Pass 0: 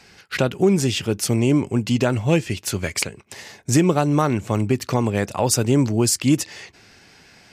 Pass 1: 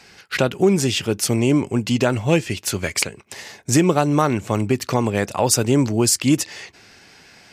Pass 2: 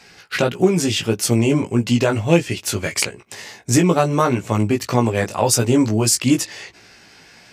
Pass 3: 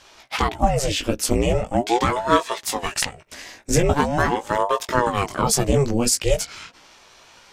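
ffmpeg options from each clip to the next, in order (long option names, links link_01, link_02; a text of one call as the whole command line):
ffmpeg -i in.wav -af "lowshelf=frequency=230:gain=-4.5,volume=2.5dB" out.wav
ffmpeg -i in.wav -af "flanger=delay=16.5:depth=2.4:speed=1.6,volume=4dB" out.wav
ffmpeg -i in.wav -af "aeval=exprs='val(0)*sin(2*PI*460*n/s+460*0.75/0.42*sin(2*PI*0.42*n/s))':channel_layout=same" out.wav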